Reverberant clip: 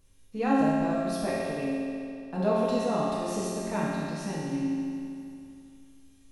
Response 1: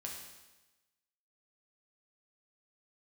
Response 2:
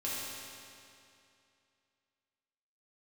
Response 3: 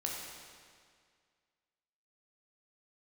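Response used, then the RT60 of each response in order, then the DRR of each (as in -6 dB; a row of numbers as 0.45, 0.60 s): 2; 1.1, 2.6, 2.0 s; -1.5, -8.5, -2.5 dB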